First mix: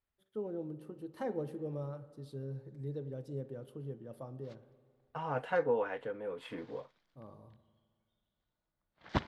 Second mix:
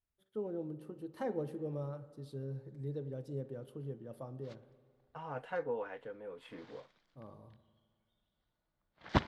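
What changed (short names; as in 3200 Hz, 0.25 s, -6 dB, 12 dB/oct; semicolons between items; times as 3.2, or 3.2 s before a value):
second voice -6.5 dB; background +3.0 dB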